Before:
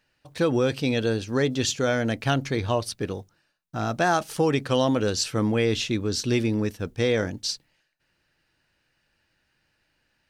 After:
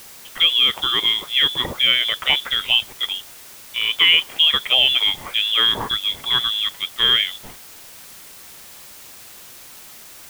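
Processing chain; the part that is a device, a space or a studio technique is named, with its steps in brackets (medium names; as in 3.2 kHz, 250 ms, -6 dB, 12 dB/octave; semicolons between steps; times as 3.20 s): scrambled radio voice (band-pass 370–3000 Hz; frequency inversion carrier 3.7 kHz; white noise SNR 20 dB); trim +8.5 dB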